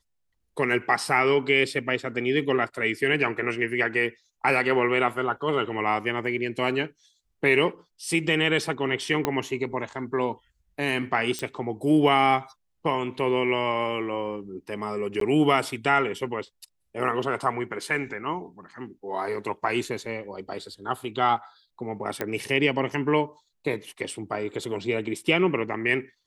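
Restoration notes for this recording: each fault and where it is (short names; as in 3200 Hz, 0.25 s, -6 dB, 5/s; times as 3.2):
9.25 pop -9 dBFS
11.39 pop -15 dBFS
15.2–15.21 gap 13 ms
22.21 pop -13 dBFS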